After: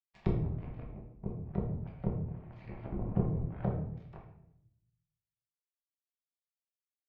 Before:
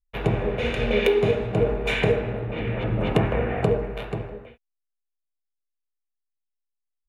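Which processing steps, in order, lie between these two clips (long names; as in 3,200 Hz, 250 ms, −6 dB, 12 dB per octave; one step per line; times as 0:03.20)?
treble cut that deepens with the level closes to 310 Hz, closed at −19 dBFS
phaser with its sweep stopped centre 2,100 Hz, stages 8
hum removal 46.23 Hz, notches 13
power curve on the samples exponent 3
rectangular room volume 170 cubic metres, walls mixed, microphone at 1.1 metres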